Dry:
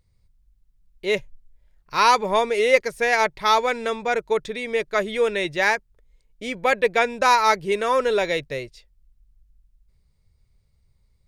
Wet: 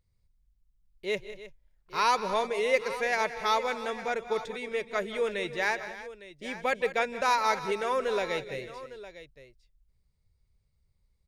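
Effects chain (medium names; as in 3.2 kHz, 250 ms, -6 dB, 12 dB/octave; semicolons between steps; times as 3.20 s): multi-tap echo 161/189/313/857 ms -19/-15/-16/-15 dB; trim -8.5 dB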